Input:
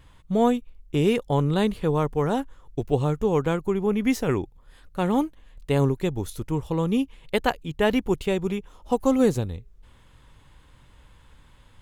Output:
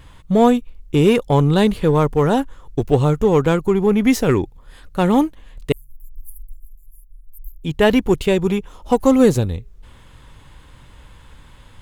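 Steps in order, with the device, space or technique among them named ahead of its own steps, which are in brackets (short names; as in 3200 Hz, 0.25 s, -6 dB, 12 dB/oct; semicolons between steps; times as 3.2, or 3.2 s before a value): 5.72–7.64 inverse Chebyshev band-stop 200–3100 Hz, stop band 80 dB; parallel distortion (in parallel at -8 dB: hard clip -24.5 dBFS, distortion -6 dB); on the sum: gain +6 dB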